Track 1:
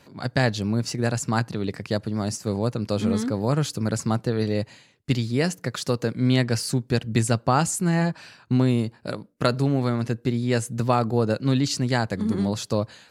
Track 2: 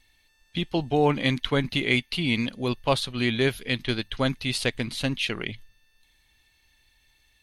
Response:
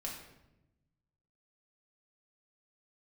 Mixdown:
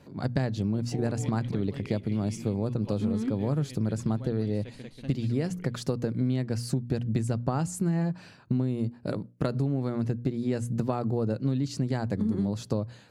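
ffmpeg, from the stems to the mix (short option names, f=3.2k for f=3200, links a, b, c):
-filter_complex "[0:a]volume=-1.5dB[a];[1:a]volume=-17.5dB,asplit=2[b][c];[c]volume=-4.5dB,aecho=0:1:186:1[d];[a][b][d]amix=inputs=3:normalize=0,tiltshelf=f=650:g=6.5,bandreject=f=60:t=h:w=6,bandreject=f=120:t=h:w=6,bandreject=f=180:t=h:w=6,bandreject=f=240:t=h:w=6,acompressor=threshold=-24dB:ratio=6"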